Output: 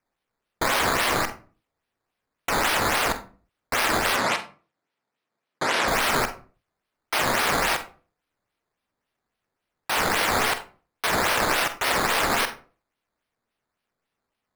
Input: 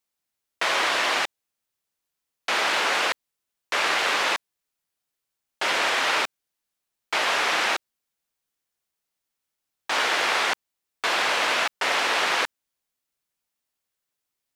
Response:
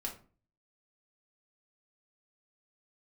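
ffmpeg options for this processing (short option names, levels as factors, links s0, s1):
-filter_complex "[0:a]acrusher=samples=11:mix=1:aa=0.000001:lfo=1:lforange=11:lforate=3.6,asettb=1/sr,asplit=3[s0][s1][s2];[s0]atrim=end=4.164[s3];[s1]atrim=start=4.16:end=5.88,asetpts=PTS-STARTPTS,afade=t=in:d=0.004:c=qsin,afade=t=out:st=1.716:d=0.004:c=qsin,highpass=150,lowpass=7700[s4];[s2]atrim=start=5.876[s5];[s3][s4]acrossfade=d=0.004:c1=hsin:c2=qsin[s6];[s6][s5]acrossfade=d=0.004:c1=qsin:c2=hsin,asplit=2[s7][s8];[1:a]atrim=start_sample=2205,afade=t=out:st=0.38:d=0.01,atrim=end_sample=17199,adelay=45[s9];[s8][s9]afir=irnorm=-1:irlink=0,volume=0.335[s10];[s7][s10]amix=inputs=2:normalize=0"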